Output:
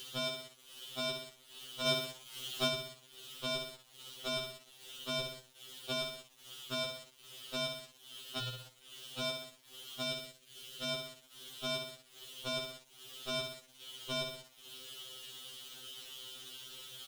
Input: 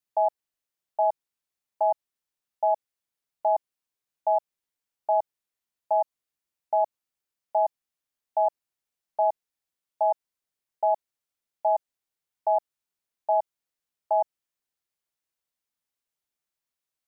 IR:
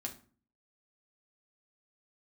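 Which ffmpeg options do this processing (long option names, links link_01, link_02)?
-filter_complex "[0:a]asplit=2[link_01][link_02];[link_02]highpass=frequency=720:poles=1,volume=38dB,asoftclip=type=tanh:threshold=-15dB[link_03];[link_01][link_03]amix=inputs=2:normalize=0,lowpass=frequency=1000:poles=1,volume=-6dB,asplit=2[link_04][link_05];[link_05]aecho=0:1:62|124|186|248|310:0.447|0.192|0.0826|0.0355|0.0153[link_06];[link_04][link_06]amix=inputs=2:normalize=0,asettb=1/sr,asplit=3[link_07][link_08][link_09];[link_07]atrim=end=8.394[link_10];[link_08]atrim=start=8.39:end=9.2,asetpts=PTS-STARTPTS,afade=type=in:duration=0.004:curve=qsin,afade=type=out:start_time=0.806:duration=0.004:curve=qsin,afreqshift=-24[link_11];[link_09]atrim=start=9.196[link_12];[link_10][link_11]acrossfade=duration=0.004:curve1=hsin:curve2=qsin[link_13];[link_13][link_12]acrossfade=duration=0.004:curve1=qsin:curve2=hsin,firequalizer=gain_entry='entry(190,0);entry(270,-8);entry(450,2);entry(640,-27);entry(920,-30);entry(1300,-7);entry(2100,-27);entry(3000,12);entry(4600,-1)':delay=0.05:min_phase=1,acompressor=mode=upward:threshold=-43dB:ratio=2.5,acrusher=bits=8:mix=0:aa=0.5,alimiter=level_in=7dB:limit=-24dB:level=0:latency=1:release=137,volume=-7dB,asettb=1/sr,asplit=3[link_14][link_15][link_16];[link_14]atrim=end=1.864[link_17];[link_15]atrim=start=1.86:end=2.68,asetpts=PTS-STARTPTS,afade=type=in:duration=0.004:curve=qsin,afade=type=out:start_time=0.816:duration=0.004:curve=qsin,acontrast=52[link_18];[link_16]atrim=start=2.676[link_19];[link_17][link_18]acrossfade=duration=0.004:curve1=hsin:curve2=qsin[link_20];[link_20][link_19]acrossfade=duration=0.004:curve1=qsin:curve2=hsin,asettb=1/sr,asplit=3[link_21][link_22][link_23];[link_21]atrim=end=10.044[link_24];[link_22]atrim=start=10.04:end=10.91,asetpts=PTS-STARTPTS,afade=type=in:duration=0.004:curve=qsin,afade=type=out:start_time=0.866:duration=0.004:curve=qsin,equalizer=frequency=920:width_type=o:width=0.65:gain=-9[link_25];[link_23]atrim=start=10.906[link_26];[link_24][link_25]acrossfade=duration=0.004:curve1=hsin:curve2=qsin[link_27];[link_27][link_26]acrossfade=duration=0.004:curve1=qsin:curve2=hsin,afftfilt=real='re*2.45*eq(mod(b,6),0)':imag='im*2.45*eq(mod(b,6),0)':win_size=2048:overlap=0.75,volume=8.5dB"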